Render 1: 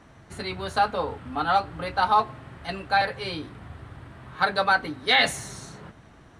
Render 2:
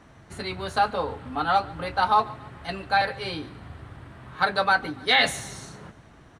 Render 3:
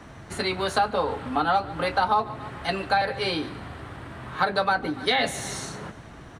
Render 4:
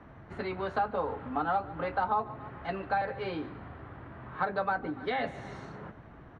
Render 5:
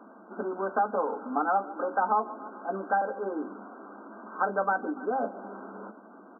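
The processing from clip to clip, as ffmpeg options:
-af "aecho=1:1:142|284|426:0.0794|0.0381|0.0183"
-filter_complex "[0:a]acrossover=split=210|720[a][b][c];[a]acompressor=threshold=-48dB:ratio=4[d];[b]acompressor=threshold=-33dB:ratio=4[e];[c]acompressor=threshold=-33dB:ratio=4[f];[d][e][f]amix=inputs=3:normalize=0,volume=7.5dB"
-af "lowpass=1.8k,volume=-6.5dB"
-af "afftfilt=real='re*between(b*sr/4096,190,1600)':imag='im*between(b*sr/4096,190,1600)':win_size=4096:overlap=0.75,volume=3.5dB"

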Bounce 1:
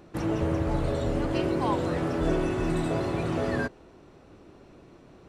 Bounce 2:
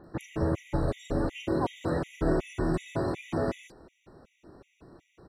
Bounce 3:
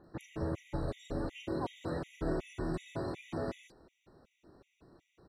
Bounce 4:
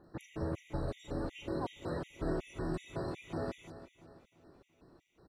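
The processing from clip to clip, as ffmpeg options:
-filter_complex "[0:a]acrossover=split=3600[a][b];[b]adelay=40[c];[a][c]amix=inputs=2:normalize=0,afftfilt=real='re*gt(sin(2*PI*2.7*pts/sr)*(1-2*mod(floor(b*sr/1024/1900),2)),0)':imag='im*gt(sin(2*PI*2.7*pts/sr)*(1-2*mod(floor(b*sr/1024/1900),2)),0)':win_size=1024:overlap=0.75"
-af "equalizer=f=4.1k:t=o:w=0.55:g=4.5,volume=-8dB"
-af "aecho=1:1:341|682|1023|1364:0.211|0.0909|0.0391|0.0168,volume=-1dB"

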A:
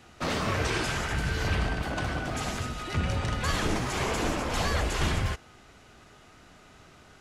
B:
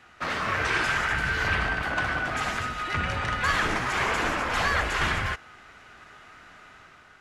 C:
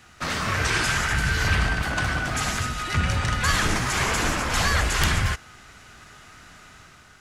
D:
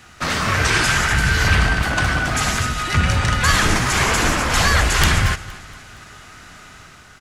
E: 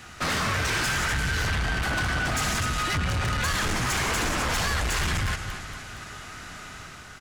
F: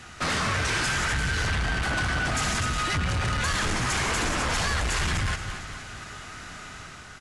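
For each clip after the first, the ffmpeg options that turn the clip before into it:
-af "equalizer=f=1.6k:w=0.66:g=13.5,dynaudnorm=f=170:g=7:m=4.5dB,volume=-8dB"
-af "bass=f=250:g=9,treble=f=4k:g=13,aeval=exprs='(mod(2.82*val(0)+1,2)-1)/2.82':c=same"
-af "aecho=1:1:233|466|699|932:0.112|0.055|0.0269|0.0132,volume=6dB"
-af "acompressor=threshold=-18dB:ratio=6,asoftclip=type=tanh:threshold=-23.5dB,volume=1dB"
-ar 24000 -c:a aac -b:a 96k

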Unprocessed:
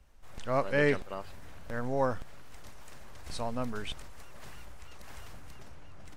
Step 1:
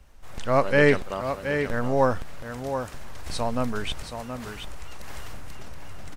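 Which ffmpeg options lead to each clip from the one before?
-af "aecho=1:1:724:0.398,volume=8dB"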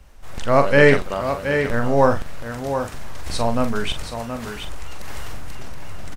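-filter_complex "[0:a]asplit=2[a][b];[b]adelay=43,volume=-8.5dB[c];[a][c]amix=inputs=2:normalize=0,volume=5dB"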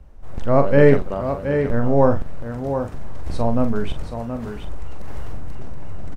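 -af "tiltshelf=f=1.2k:g=9,volume=-5.5dB"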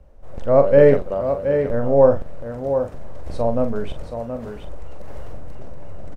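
-af "equalizer=f=550:t=o:w=0.66:g=10,volume=-4.5dB"

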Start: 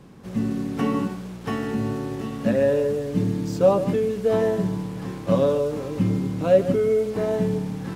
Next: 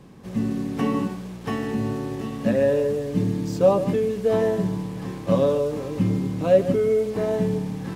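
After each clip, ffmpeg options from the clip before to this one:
-af "bandreject=f=1.4k:w=12"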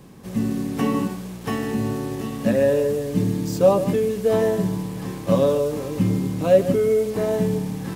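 -af "highshelf=f=8.2k:g=12,volume=1.5dB"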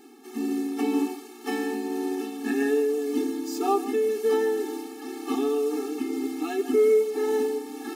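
-af "tremolo=f=1.9:d=0.29,afftfilt=real='re*eq(mod(floor(b*sr/1024/230),2),1)':imag='im*eq(mod(floor(b*sr/1024/230),2),1)':win_size=1024:overlap=0.75,volume=2dB"

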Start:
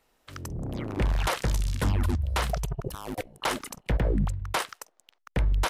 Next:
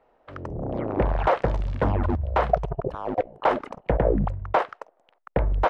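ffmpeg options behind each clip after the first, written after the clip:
-af "lowpass=2k,equalizer=f=620:t=o:w=1.7:g=12.5"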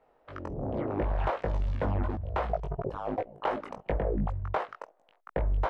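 -af "acompressor=threshold=-23dB:ratio=6,flanger=delay=18.5:depth=2.5:speed=2.8"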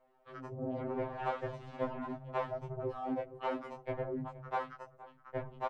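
-filter_complex "[0:a]asplit=2[a][b];[b]adelay=469,lowpass=f=1.2k:p=1,volume=-16dB,asplit=2[c][d];[d]adelay=469,lowpass=f=1.2k:p=1,volume=0.26,asplit=2[e][f];[f]adelay=469,lowpass=f=1.2k:p=1,volume=0.26[g];[a][c][e][g]amix=inputs=4:normalize=0,afftfilt=real='re*2.45*eq(mod(b,6),0)':imag='im*2.45*eq(mod(b,6),0)':win_size=2048:overlap=0.75,volume=-3dB"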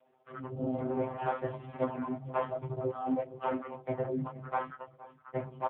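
-af "equalizer=f=180:t=o:w=0.36:g=10,volume=4.5dB" -ar 8000 -c:a libopencore_amrnb -b:a 5150

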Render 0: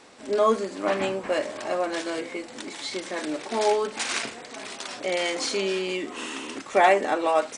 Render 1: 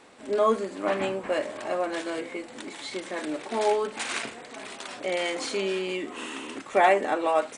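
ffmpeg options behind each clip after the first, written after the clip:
-af "equalizer=f=5.4k:w=1.6:g=-6.5,volume=-1.5dB"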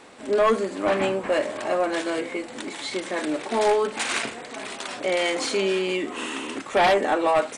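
-af "aeval=exprs='0.376*sin(PI/2*2.24*val(0)/0.376)':c=same,volume=-5.5dB"

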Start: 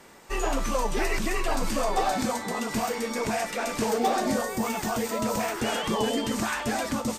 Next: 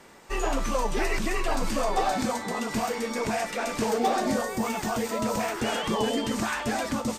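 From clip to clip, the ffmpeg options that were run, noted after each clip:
-af "highshelf=f=9.8k:g=-5.5"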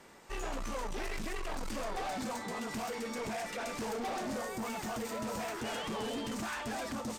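-af "asoftclip=type=tanh:threshold=-29dB,volume=-5dB"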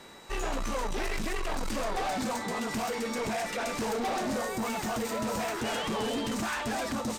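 -af "aeval=exprs='val(0)+0.000891*sin(2*PI*3900*n/s)':c=same,volume=6dB"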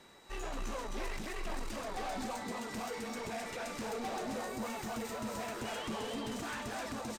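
-af "flanger=delay=0.3:depth=3.5:regen=-65:speed=1.6:shape=triangular,aecho=1:1:260:0.473,volume=-4.5dB"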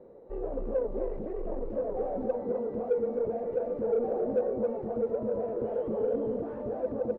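-filter_complex "[0:a]lowpass=f=500:t=q:w=6,asplit=2[a][b];[b]asoftclip=type=tanh:threshold=-27.5dB,volume=-8dB[c];[a][c]amix=inputs=2:normalize=0"

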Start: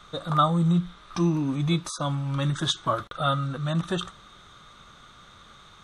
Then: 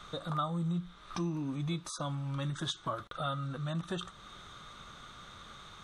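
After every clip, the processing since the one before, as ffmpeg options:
-af "acompressor=threshold=-41dB:ratio=2"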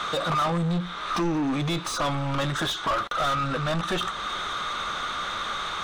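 -filter_complex "[0:a]asplit=2[a][b];[b]highpass=f=720:p=1,volume=28dB,asoftclip=type=tanh:threshold=-21dB[c];[a][c]amix=inputs=2:normalize=0,lowpass=f=2.6k:p=1,volume=-6dB,asubboost=boost=4.5:cutoff=51,volume=4dB"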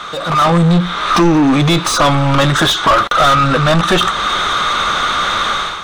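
-af "dynaudnorm=f=140:g=5:m=12dB,volume=3dB"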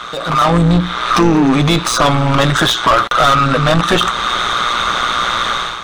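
-af "tremolo=f=120:d=0.571,volume=2dB"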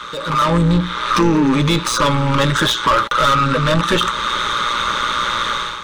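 -af "asuperstop=centerf=720:order=20:qfactor=4.1,volume=-3dB"

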